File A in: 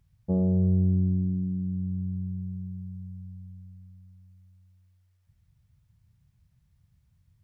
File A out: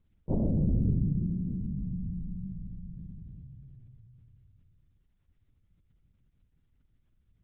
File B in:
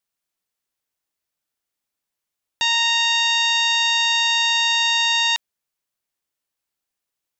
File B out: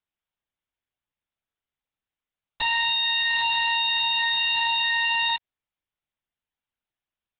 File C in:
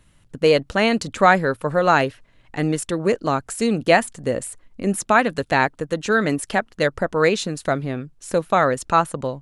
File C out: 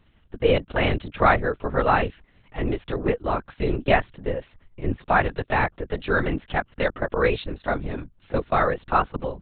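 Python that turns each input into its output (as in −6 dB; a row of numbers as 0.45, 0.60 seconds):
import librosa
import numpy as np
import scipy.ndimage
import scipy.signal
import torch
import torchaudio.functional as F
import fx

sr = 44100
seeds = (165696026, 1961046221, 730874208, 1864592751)

y = fx.lpc_vocoder(x, sr, seeds[0], excitation='whisper', order=10)
y = y * librosa.db_to_amplitude(-3.5)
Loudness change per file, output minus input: −3.5, −5.0, −4.0 LU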